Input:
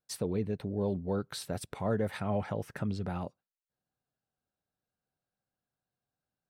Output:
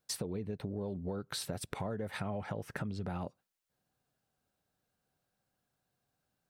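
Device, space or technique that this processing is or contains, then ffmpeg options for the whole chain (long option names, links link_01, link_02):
serial compression, peaks first: -af "acompressor=threshold=-38dB:ratio=6,acompressor=threshold=-45dB:ratio=2,volume=7.5dB"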